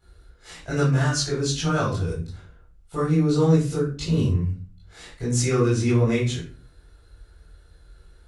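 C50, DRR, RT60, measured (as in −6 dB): 4.5 dB, −10.0 dB, 0.40 s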